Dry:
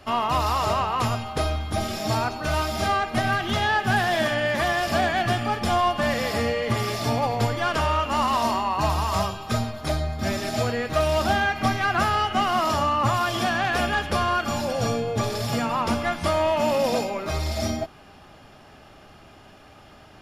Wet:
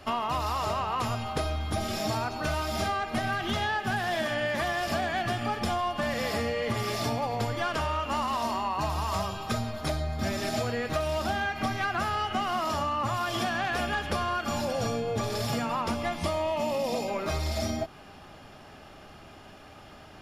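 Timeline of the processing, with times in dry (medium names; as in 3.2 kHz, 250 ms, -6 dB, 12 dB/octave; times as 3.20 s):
15.96–17.08 s: peaking EQ 1.5 kHz -11.5 dB 0.29 oct
whole clip: hum notches 60/120 Hz; compression, threshold -26 dBFS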